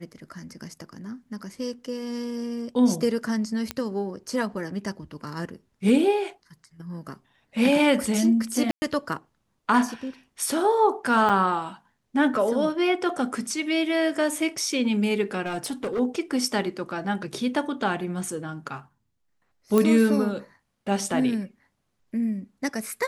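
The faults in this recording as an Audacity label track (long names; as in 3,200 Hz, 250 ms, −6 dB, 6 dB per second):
3.710000	3.710000	click −12 dBFS
8.710000	8.820000	drop-out 110 ms
11.290000	11.300000	drop-out 6.2 ms
15.450000	16.000000	clipping −24.5 dBFS
19.780000	19.780000	click −9 dBFS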